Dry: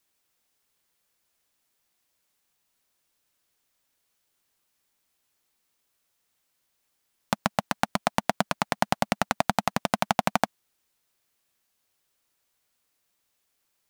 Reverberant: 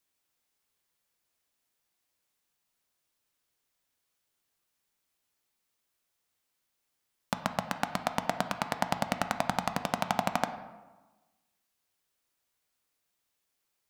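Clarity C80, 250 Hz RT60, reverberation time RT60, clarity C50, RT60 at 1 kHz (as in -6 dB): 12.5 dB, 1.3 s, 1.2 s, 10.5 dB, 1.2 s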